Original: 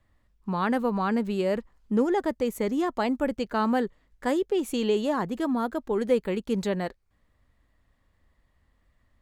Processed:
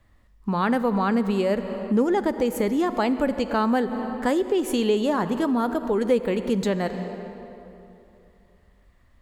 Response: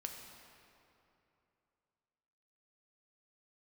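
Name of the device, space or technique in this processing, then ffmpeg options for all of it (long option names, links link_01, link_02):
ducked reverb: -filter_complex "[0:a]asplit=3[link_01][link_02][link_03];[1:a]atrim=start_sample=2205[link_04];[link_02][link_04]afir=irnorm=-1:irlink=0[link_05];[link_03]apad=whole_len=406514[link_06];[link_05][link_06]sidechaincompress=threshold=-32dB:ratio=8:attack=35:release=212,volume=5.5dB[link_07];[link_01][link_07]amix=inputs=2:normalize=0"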